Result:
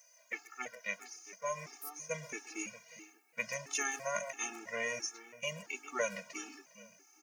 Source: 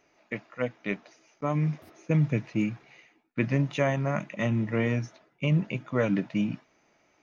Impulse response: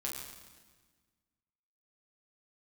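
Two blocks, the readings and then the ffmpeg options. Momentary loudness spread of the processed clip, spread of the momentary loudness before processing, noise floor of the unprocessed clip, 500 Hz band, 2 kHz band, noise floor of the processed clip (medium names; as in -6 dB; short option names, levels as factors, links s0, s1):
14 LU, 12 LU, -68 dBFS, -10.0 dB, -3.0 dB, -66 dBFS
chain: -filter_complex "[0:a]highpass=730,asplit=2[s0][s1];[s1]adelay=130,highpass=300,lowpass=3400,asoftclip=type=hard:threshold=0.0531,volume=0.126[s2];[s0][s2]amix=inputs=2:normalize=0,aexciter=amount=10.6:drive=6:freq=5500,asplit=2[s3][s4];[s4]adelay=408,lowpass=f=2200:p=1,volume=0.224,asplit=2[s5][s6];[s6]adelay=408,lowpass=f=2200:p=1,volume=0.24,asplit=2[s7][s8];[s8]adelay=408,lowpass=f=2200:p=1,volume=0.24[s9];[s5][s7][s9]amix=inputs=3:normalize=0[s10];[s3][s10]amix=inputs=2:normalize=0,afftfilt=real='re*gt(sin(2*PI*1.5*pts/sr)*(1-2*mod(floor(b*sr/1024/230),2)),0)':imag='im*gt(sin(2*PI*1.5*pts/sr)*(1-2*mod(floor(b*sr/1024/230),2)),0)':win_size=1024:overlap=0.75"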